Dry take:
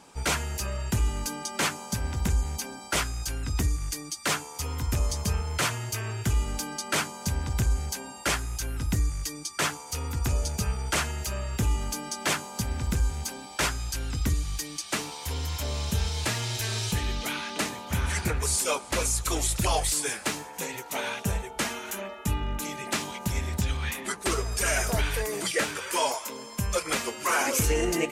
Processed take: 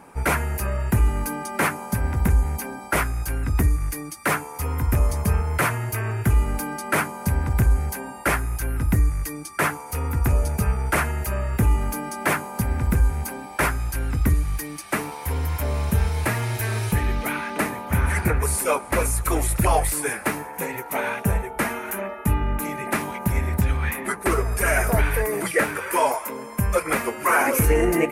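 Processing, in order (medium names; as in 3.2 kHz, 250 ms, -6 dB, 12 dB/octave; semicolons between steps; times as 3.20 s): high-order bell 4.8 kHz -14.5 dB; trim +7 dB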